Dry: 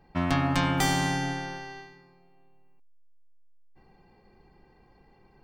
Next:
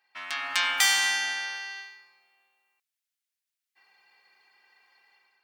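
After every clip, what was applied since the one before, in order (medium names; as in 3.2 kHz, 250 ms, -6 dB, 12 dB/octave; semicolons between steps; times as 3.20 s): Chebyshev high-pass 2 kHz, order 2; level rider gain up to 9 dB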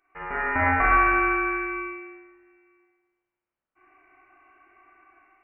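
spring tank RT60 1.3 s, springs 33/48 ms, chirp 80 ms, DRR -5.5 dB; frequency inversion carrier 3.1 kHz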